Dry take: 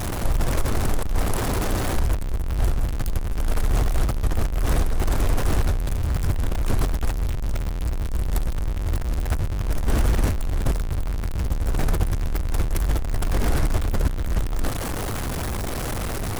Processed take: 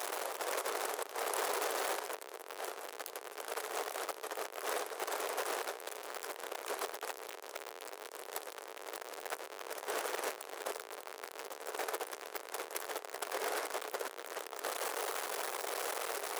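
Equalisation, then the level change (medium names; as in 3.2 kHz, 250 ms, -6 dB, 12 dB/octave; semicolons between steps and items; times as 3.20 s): Chebyshev high-pass 420 Hz, order 4; -5.5 dB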